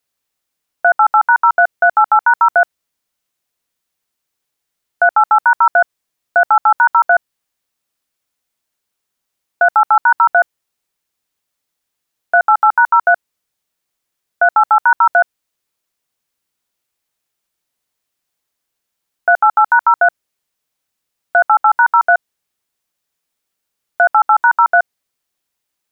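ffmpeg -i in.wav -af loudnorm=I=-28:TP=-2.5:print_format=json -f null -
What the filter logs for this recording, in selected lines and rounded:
"input_i" : "-12.5",
"input_tp" : "-2.6",
"input_lra" : "4.2",
"input_thresh" : "-22.6",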